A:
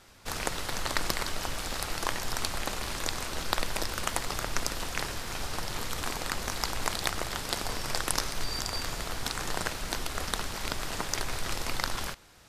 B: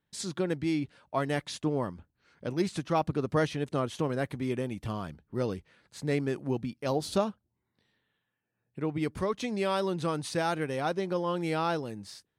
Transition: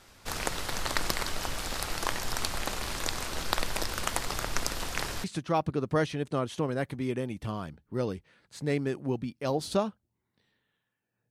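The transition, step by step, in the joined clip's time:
A
5.24 s: go over to B from 2.65 s

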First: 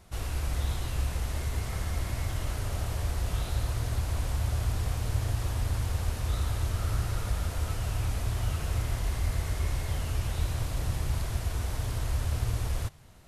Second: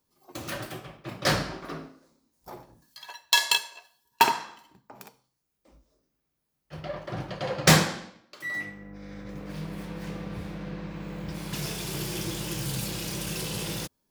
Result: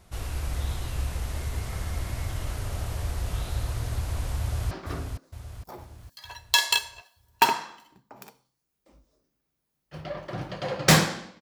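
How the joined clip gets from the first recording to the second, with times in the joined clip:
first
4.40–4.71 s: echo throw 460 ms, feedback 50%, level -6 dB
4.71 s: go over to second from 1.50 s

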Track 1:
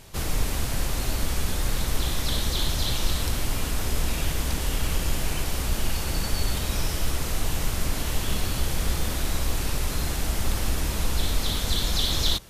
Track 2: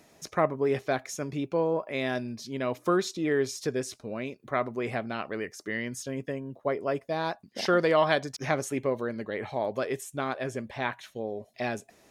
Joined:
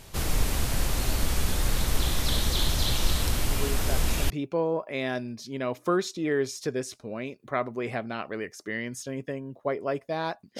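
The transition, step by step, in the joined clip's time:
track 1
3.51 s: add track 2 from 0.51 s 0.79 s -8 dB
4.30 s: go over to track 2 from 1.30 s

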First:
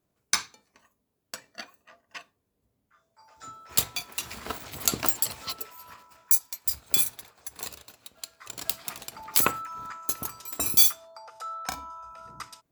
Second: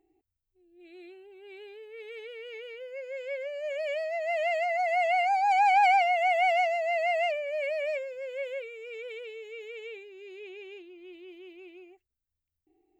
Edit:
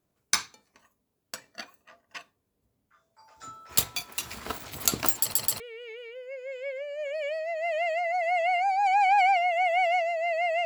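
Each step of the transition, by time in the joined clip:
first
5.21 s: stutter in place 0.13 s, 3 plays
5.60 s: go over to second from 2.25 s

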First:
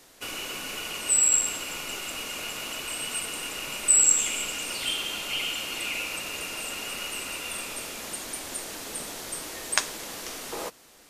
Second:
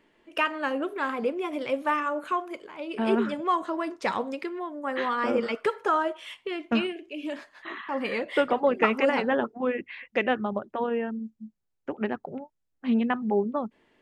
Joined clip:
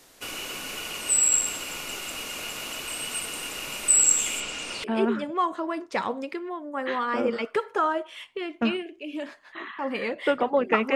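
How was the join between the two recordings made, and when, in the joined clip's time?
first
4.40–4.84 s: Bessel low-pass 6.4 kHz, order 4
4.84 s: go over to second from 2.94 s

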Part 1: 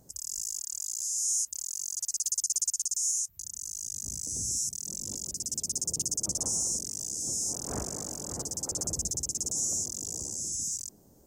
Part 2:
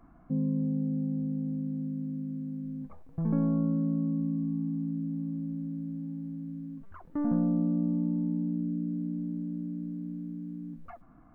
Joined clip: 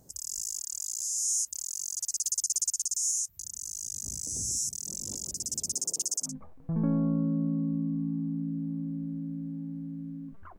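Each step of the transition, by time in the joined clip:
part 1
5.72–6.35 s: high-pass 170 Hz -> 1.1 kHz
6.28 s: go over to part 2 from 2.77 s, crossfade 0.14 s

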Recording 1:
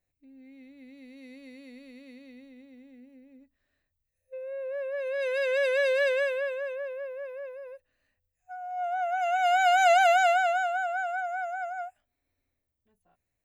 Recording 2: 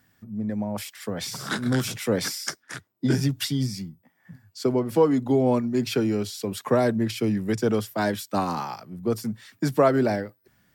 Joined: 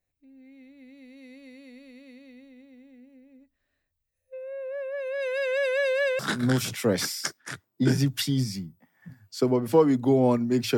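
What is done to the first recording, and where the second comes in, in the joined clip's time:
recording 1
6.19 s: go over to recording 2 from 1.42 s

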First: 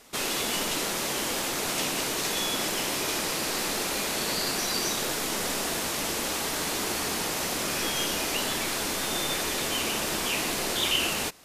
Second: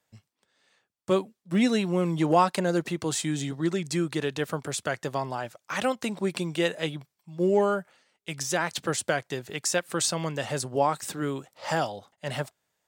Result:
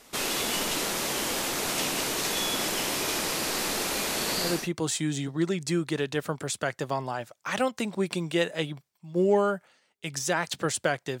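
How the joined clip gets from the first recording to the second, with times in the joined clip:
first
4.53 s: go over to second from 2.77 s, crossfade 0.32 s equal-power

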